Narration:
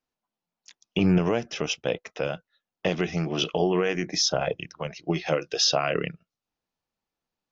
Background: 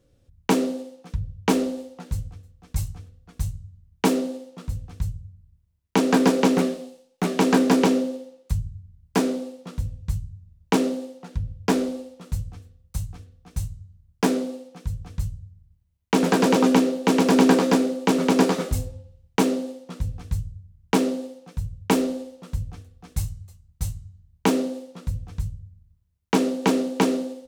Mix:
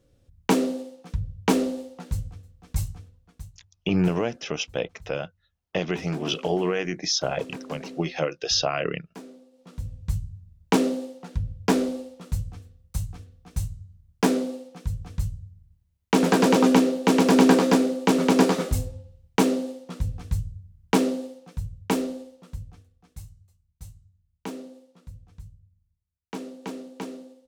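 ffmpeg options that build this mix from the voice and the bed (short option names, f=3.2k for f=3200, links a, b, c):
-filter_complex "[0:a]adelay=2900,volume=-1dB[a];[1:a]volume=20.5dB,afade=t=out:st=2.82:d=0.7:silence=0.0944061,afade=t=in:st=9.51:d=0.64:silence=0.0891251,afade=t=out:st=20.89:d=2.27:silence=0.177828[b];[a][b]amix=inputs=2:normalize=0"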